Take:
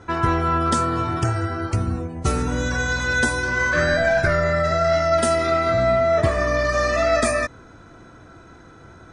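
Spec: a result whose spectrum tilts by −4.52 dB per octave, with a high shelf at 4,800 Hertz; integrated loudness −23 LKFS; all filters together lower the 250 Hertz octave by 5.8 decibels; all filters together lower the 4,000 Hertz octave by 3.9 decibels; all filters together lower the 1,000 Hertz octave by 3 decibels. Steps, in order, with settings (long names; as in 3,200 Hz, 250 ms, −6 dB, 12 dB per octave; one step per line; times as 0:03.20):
parametric band 250 Hz −8.5 dB
parametric band 1,000 Hz −4 dB
parametric band 4,000 Hz −7.5 dB
high-shelf EQ 4,800 Hz +5.5 dB
level −0.5 dB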